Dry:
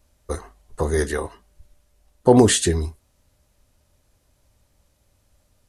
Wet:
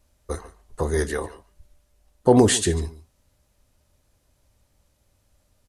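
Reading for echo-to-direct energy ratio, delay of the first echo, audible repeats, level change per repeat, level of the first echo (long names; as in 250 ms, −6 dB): −18.0 dB, 144 ms, 1, repeats not evenly spaced, −18.0 dB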